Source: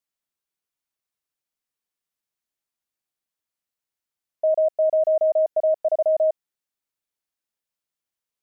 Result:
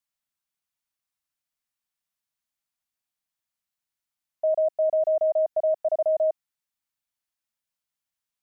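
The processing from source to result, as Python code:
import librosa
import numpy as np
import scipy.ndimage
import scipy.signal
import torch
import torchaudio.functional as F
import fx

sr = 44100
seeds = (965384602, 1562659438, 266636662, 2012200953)

y = fx.peak_eq(x, sr, hz=410.0, db=-14.5, octaves=0.57)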